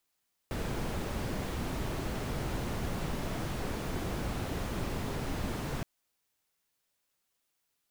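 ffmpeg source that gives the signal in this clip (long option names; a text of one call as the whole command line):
ffmpeg -f lavfi -i "anoisesrc=color=brown:amplitude=0.0933:duration=5.32:sample_rate=44100:seed=1" out.wav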